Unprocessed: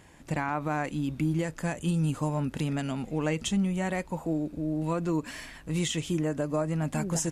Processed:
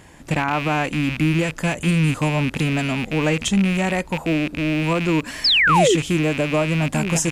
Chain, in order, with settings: rattling part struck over -39 dBFS, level -25 dBFS; painted sound fall, 5.44–5.96, 310–5500 Hz -24 dBFS; gain +8.5 dB

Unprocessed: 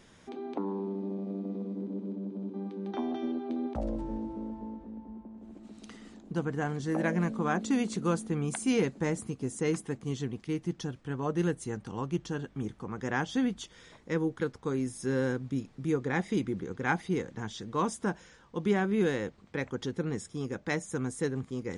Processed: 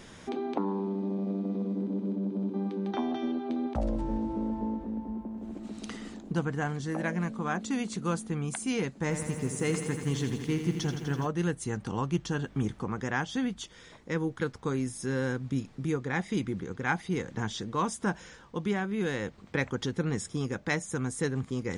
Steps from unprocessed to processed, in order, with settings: dynamic EQ 380 Hz, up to -5 dB, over -39 dBFS, Q 0.81; vocal rider within 5 dB 0.5 s; 9.02–11.27 lo-fi delay 83 ms, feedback 80%, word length 10-bit, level -8.5 dB; gain +3.5 dB

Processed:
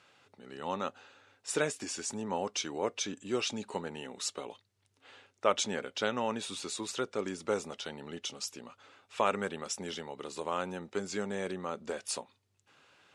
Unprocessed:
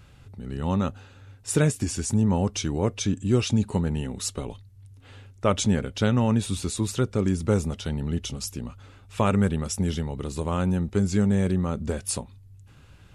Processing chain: BPF 480–7000 Hz; gain -2.5 dB

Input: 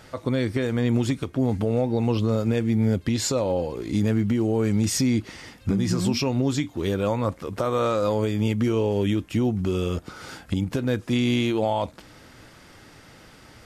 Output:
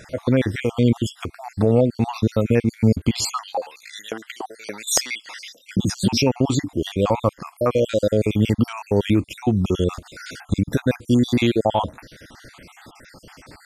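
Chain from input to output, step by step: random spectral dropouts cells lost 56%; 3.26–5.77 LFO high-pass saw up 3.5 Hz 590–5100 Hz; gain +7 dB

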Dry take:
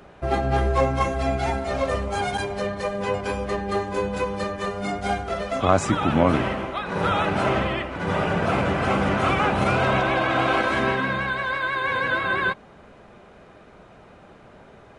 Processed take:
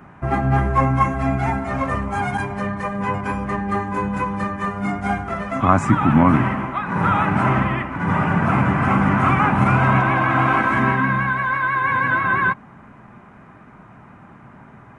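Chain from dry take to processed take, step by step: ten-band EQ 125 Hz +11 dB, 250 Hz +9 dB, 500 Hz -8 dB, 1000 Hz +10 dB, 2000 Hz +7 dB, 4000 Hz -11 dB; gain -2.5 dB

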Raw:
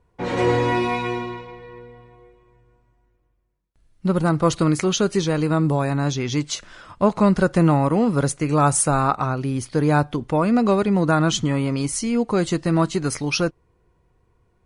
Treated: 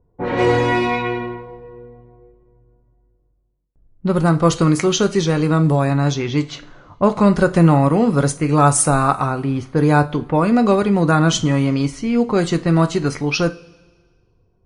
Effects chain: low-pass opened by the level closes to 590 Hz, open at -15 dBFS; two-slope reverb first 0.3 s, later 1.5 s, from -18 dB, DRR 8.5 dB; gain +3 dB

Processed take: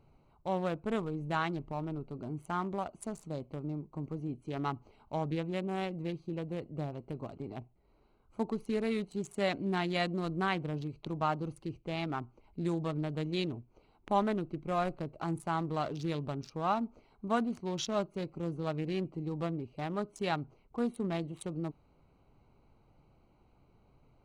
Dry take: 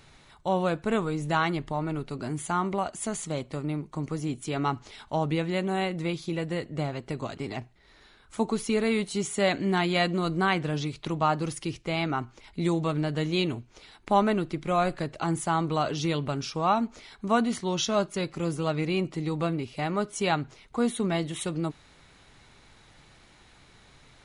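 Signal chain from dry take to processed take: Wiener smoothing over 25 samples; gain -6.5 dB

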